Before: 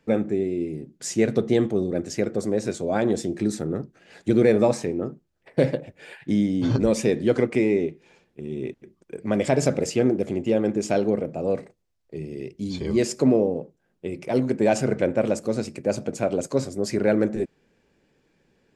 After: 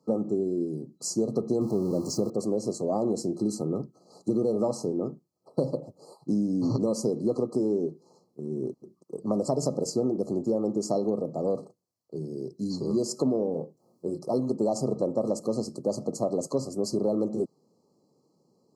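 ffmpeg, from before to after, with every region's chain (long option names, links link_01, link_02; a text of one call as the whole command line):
ffmpeg -i in.wav -filter_complex "[0:a]asettb=1/sr,asplit=3[link_01][link_02][link_03];[link_01]atrim=end=1.614[link_04];[link_02]atrim=start=1.61:end=2.3,asetpts=PTS-STARTPTS,afade=type=in:duration=0.004:curve=qsin,afade=type=out:start_time=0.686:duration=0.004:curve=qsin,aeval=exprs='val(0)+0.5*0.0224*sgn(val(0))':channel_layout=same,acrossover=split=9000[link_05][link_06];[link_06]acompressor=threshold=-49dB:ratio=4:attack=1:release=60[link_07];[link_05][link_07]amix=inputs=2:normalize=0,lowshelf=frequency=120:gain=9.5[link_08];[link_03]atrim=start=2.296[link_09];[link_04][link_08]acrossfade=duration=0.004:curve1=hsin:curve2=qsin[link_10];[link_10][link_09]acrossfade=duration=0.004:curve1=qsin:curve2=hsin,asettb=1/sr,asplit=3[link_11][link_12][link_13];[link_11]atrim=end=13.524[link_14];[link_12]atrim=start=13.52:end=14.19,asetpts=PTS-STARTPTS,afade=type=in:duration=0.004:curve=qsin,afade=type=out:start_time=0.666:duration=0.004:curve=qsin,acompressor=mode=upward:threshold=-51dB:ratio=2.5:attack=3.2:release=140:knee=2.83:detection=peak,asplit=2[link_15][link_16];[link_16]adelay=25,volume=-6.5dB[link_17];[link_15][link_17]amix=inputs=2:normalize=0,atrim=end_sample=29547[link_18];[link_13]atrim=start=14.186[link_19];[link_14][link_18]acrossfade=duration=0.004:curve1=hsin:curve2=qsin[link_20];[link_20][link_19]acrossfade=duration=0.004:curve1=qsin:curve2=hsin,highpass=frequency=120:width=0.5412,highpass=frequency=120:width=1.3066,afftfilt=real='re*(1-between(b*sr/4096,1300,4000))':imag='im*(1-between(b*sr/4096,1300,4000))':win_size=4096:overlap=0.75,acompressor=threshold=-21dB:ratio=6,volume=-1dB" out.wav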